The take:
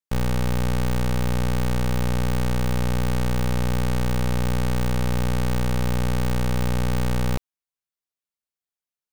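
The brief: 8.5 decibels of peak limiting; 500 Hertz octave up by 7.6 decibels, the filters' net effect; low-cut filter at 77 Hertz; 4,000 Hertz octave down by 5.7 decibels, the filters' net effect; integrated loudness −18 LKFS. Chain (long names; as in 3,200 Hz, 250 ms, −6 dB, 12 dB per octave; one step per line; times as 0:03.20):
high-pass filter 77 Hz
parametric band 500 Hz +8.5 dB
parametric band 4,000 Hz −8 dB
level +14 dB
brickwall limiter −6 dBFS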